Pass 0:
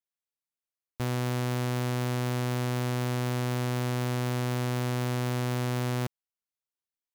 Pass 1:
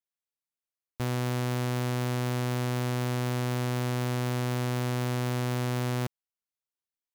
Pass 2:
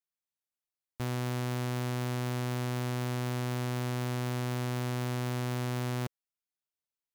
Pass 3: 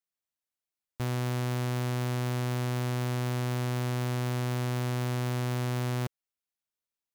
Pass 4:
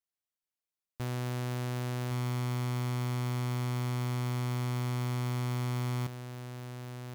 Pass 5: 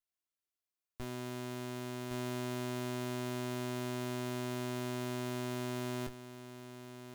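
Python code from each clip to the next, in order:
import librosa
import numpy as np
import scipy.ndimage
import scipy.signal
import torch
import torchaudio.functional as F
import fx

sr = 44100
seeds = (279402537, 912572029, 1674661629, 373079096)

y1 = x
y2 = fx.peak_eq(y1, sr, hz=520.0, db=-2.5, octaves=0.27)
y2 = y2 * 10.0 ** (-3.5 / 20.0)
y3 = fx.leveller(y2, sr, passes=1)
y3 = y3 * 10.0 ** (1.5 / 20.0)
y4 = y3 + 10.0 ** (-8.0 / 20.0) * np.pad(y3, (int(1112 * sr / 1000.0), 0))[:len(y3)]
y4 = y4 * 10.0 ** (-4.0 / 20.0)
y5 = fx.lower_of_two(y4, sr, delay_ms=2.9)
y5 = fx.doubler(y5, sr, ms=21.0, db=-6)
y5 = y5 * 10.0 ** (-2.5 / 20.0)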